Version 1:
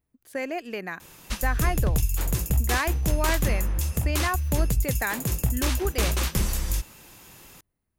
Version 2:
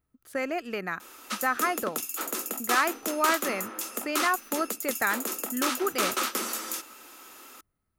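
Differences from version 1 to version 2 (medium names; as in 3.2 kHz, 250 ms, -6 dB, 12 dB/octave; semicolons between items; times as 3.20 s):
background: add steep high-pass 230 Hz 72 dB/octave; master: add peaking EQ 1.3 kHz +13 dB 0.22 oct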